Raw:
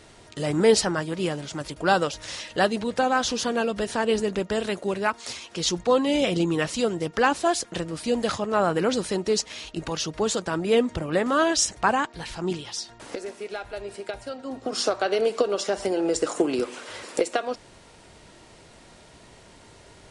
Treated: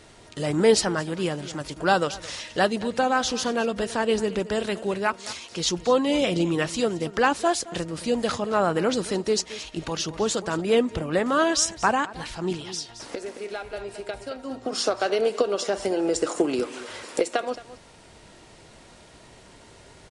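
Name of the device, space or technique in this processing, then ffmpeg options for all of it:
ducked delay: -filter_complex "[0:a]asplit=3[a][b][c];[b]adelay=220,volume=-8.5dB[d];[c]apad=whole_len=896127[e];[d][e]sidechaincompress=threshold=-28dB:ratio=8:attack=25:release=1270[f];[a][f]amix=inputs=2:normalize=0"

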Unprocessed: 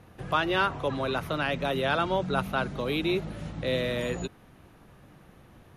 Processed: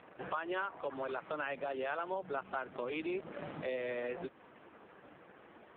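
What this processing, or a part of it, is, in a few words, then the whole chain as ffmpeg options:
voicemail: -af "highpass=350,lowpass=2.7k,acompressor=threshold=-40dB:ratio=6,volume=5.5dB" -ar 8000 -c:a libopencore_amrnb -b:a 4750

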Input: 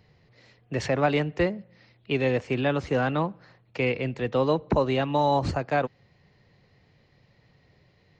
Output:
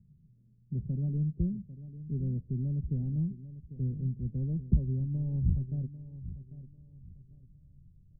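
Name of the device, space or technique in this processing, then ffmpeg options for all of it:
the neighbour's flat through the wall: -filter_complex "[0:a]asubboost=boost=6.5:cutoff=69,lowpass=f=210:w=0.5412,lowpass=f=210:w=1.3066,equalizer=f=140:t=o:w=0.77:g=3,aecho=1:1:5.1:0.39,asplit=2[a][b];[b]adelay=796,lowpass=f=2k:p=1,volume=-14dB,asplit=2[c][d];[d]adelay=796,lowpass=f=2k:p=1,volume=0.31,asplit=2[e][f];[f]adelay=796,lowpass=f=2k:p=1,volume=0.31[g];[a][c][e][g]amix=inputs=4:normalize=0"

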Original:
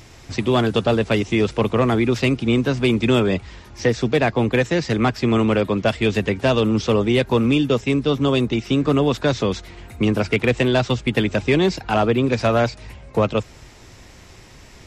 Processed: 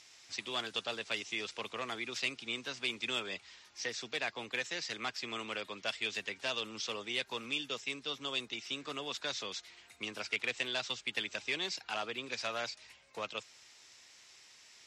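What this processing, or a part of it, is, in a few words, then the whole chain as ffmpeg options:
piezo pickup straight into a mixer: -af "lowpass=5.5k,aderivative,volume=-1dB"

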